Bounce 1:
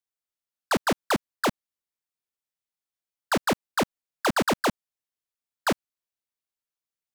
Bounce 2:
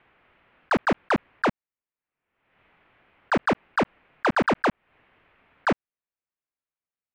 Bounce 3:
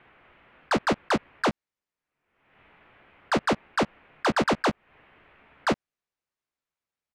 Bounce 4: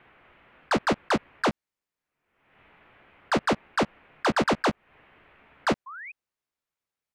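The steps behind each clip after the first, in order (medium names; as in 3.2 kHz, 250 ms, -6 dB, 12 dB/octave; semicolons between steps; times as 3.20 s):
steep low-pass 2.6 kHz 36 dB/octave; waveshaping leveller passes 1; swell ahead of each attack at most 59 dB/s; trim +1 dB
overload inside the chain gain 25.5 dB; distance through air 61 m; doubling 14 ms -10 dB; trim +5 dB
painted sound rise, 5.86–6.12 s, 1–2.6 kHz -40 dBFS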